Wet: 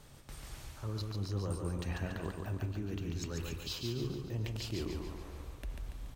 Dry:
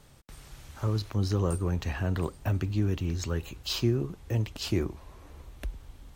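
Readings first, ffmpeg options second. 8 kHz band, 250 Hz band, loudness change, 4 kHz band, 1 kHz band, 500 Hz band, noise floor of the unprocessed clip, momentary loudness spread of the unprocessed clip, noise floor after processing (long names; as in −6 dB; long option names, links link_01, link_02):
−6.0 dB, −8.5 dB, −9.0 dB, −6.5 dB, −7.5 dB, −8.0 dB, −53 dBFS, 20 LU, −53 dBFS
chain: -af "bandreject=frequency=91.68:width_type=h:width=4,bandreject=frequency=183.36:width_type=h:width=4,bandreject=frequency=275.04:width_type=h:width=4,bandreject=frequency=366.72:width_type=h:width=4,bandreject=frequency=458.4:width_type=h:width=4,bandreject=frequency=550.08:width_type=h:width=4,bandreject=frequency=641.76:width_type=h:width=4,bandreject=frequency=733.44:width_type=h:width=4,bandreject=frequency=825.12:width_type=h:width=4,bandreject=frequency=916.8:width_type=h:width=4,bandreject=frequency=1008.48:width_type=h:width=4,bandreject=frequency=1100.16:width_type=h:width=4,bandreject=frequency=1191.84:width_type=h:width=4,bandreject=frequency=1283.52:width_type=h:width=4,bandreject=frequency=1375.2:width_type=h:width=4,bandreject=frequency=1466.88:width_type=h:width=4,bandreject=frequency=1558.56:width_type=h:width=4,bandreject=frequency=1650.24:width_type=h:width=4,bandreject=frequency=1741.92:width_type=h:width=4,bandreject=frequency=1833.6:width_type=h:width=4,bandreject=frequency=1925.28:width_type=h:width=4,bandreject=frequency=2016.96:width_type=h:width=4,bandreject=frequency=2108.64:width_type=h:width=4,bandreject=frequency=2200.32:width_type=h:width=4,bandreject=frequency=2292:width_type=h:width=4,bandreject=frequency=2383.68:width_type=h:width=4,bandreject=frequency=2475.36:width_type=h:width=4,bandreject=frequency=2567.04:width_type=h:width=4,bandreject=frequency=2658.72:width_type=h:width=4,bandreject=frequency=2750.4:width_type=h:width=4,bandreject=frequency=2842.08:width_type=h:width=4,bandreject=frequency=2933.76:width_type=h:width=4,bandreject=frequency=3025.44:width_type=h:width=4,bandreject=frequency=3117.12:width_type=h:width=4,bandreject=frequency=3208.8:width_type=h:width=4,bandreject=frequency=3300.48:width_type=h:width=4,areverse,acompressor=threshold=-37dB:ratio=4,areverse,aecho=1:1:142|284|426|568|710|852:0.631|0.315|0.158|0.0789|0.0394|0.0197"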